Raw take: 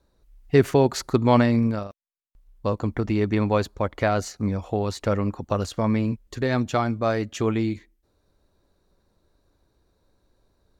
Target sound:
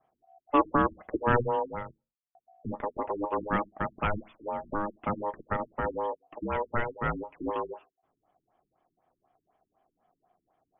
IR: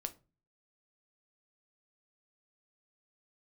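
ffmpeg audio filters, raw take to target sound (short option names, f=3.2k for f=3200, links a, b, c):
-filter_complex "[0:a]aeval=exprs='0.562*(cos(1*acos(clip(val(0)/0.562,-1,1)))-cos(1*PI/2))+0.0316*(cos(6*acos(clip(val(0)/0.562,-1,1)))-cos(6*PI/2))':c=same,aeval=exprs='val(0)*sin(2*PI*720*n/s)':c=same,asplit=2[a][b];[1:a]atrim=start_sample=2205,asetrate=74970,aresample=44100[c];[b][c]afir=irnorm=-1:irlink=0,volume=-1dB[d];[a][d]amix=inputs=2:normalize=0,afftfilt=real='re*lt(b*sr/1024,360*pow(3600/360,0.5+0.5*sin(2*PI*4*pts/sr)))':imag='im*lt(b*sr/1024,360*pow(3600/360,0.5+0.5*sin(2*PI*4*pts/sr)))':win_size=1024:overlap=0.75,volume=-6.5dB"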